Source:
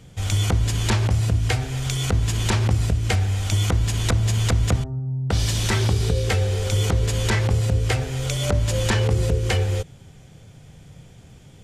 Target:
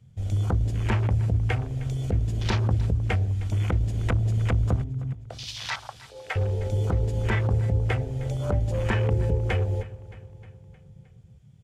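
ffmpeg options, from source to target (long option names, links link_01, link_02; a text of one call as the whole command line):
ffmpeg -i in.wav -filter_complex "[0:a]asettb=1/sr,asplit=3[link_01][link_02][link_03];[link_01]atrim=end=5.134[link_04];[link_02]atrim=start=5.13:end=6.36,asetpts=PTS-STARTPTS,afade=type=in:duration=0.004:curve=qsin,afade=type=out:start_time=1.226:duration=0.004:curve=qsin,highpass=frequency=650:width=0.5412,highpass=frequency=650:width=1.3066[link_05];[link_03]atrim=start=6.356[link_06];[link_04][link_05]acrossfade=duration=0.004:curve1=hsin:curve2=qsin[link_07];[link_07][link_06]acrossfade=duration=0.004:curve1=qsin:curve2=hsin,afwtdn=0.0316,aecho=1:1:310|620|930|1240|1550:0.119|0.0701|0.0414|0.0244|0.0144,volume=-3.5dB" out.wav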